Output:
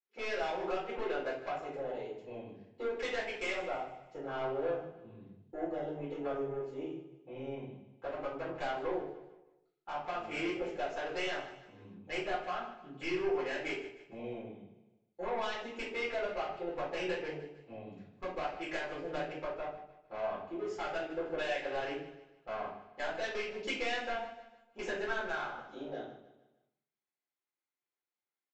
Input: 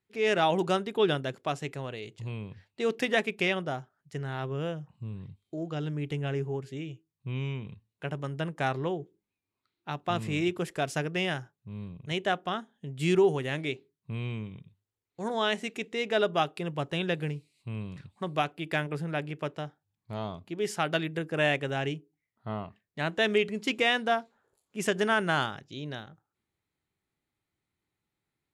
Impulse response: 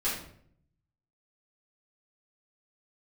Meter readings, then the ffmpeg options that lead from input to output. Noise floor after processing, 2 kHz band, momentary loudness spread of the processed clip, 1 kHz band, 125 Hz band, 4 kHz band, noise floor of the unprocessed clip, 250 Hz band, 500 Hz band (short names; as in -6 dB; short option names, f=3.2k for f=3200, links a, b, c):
under -85 dBFS, -7.0 dB, 14 LU, -6.0 dB, -18.5 dB, -10.0 dB, under -85 dBFS, -9.5 dB, -6.0 dB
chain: -filter_complex "[0:a]afwtdn=0.0158,highpass=660,tiltshelf=f=1.2k:g=4,acompressor=threshold=-36dB:ratio=5,aresample=16000,asoftclip=type=tanh:threshold=-37dB,aresample=44100,aecho=1:1:152|304|456|608:0.188|0.0791|0.0332|0.014[a];[1:a]atrim=start_sample=2205,asetrate=57330,aresample=44100[b];[a][b]afir=irnorm=-1:irlink=0,volume=2.5dB"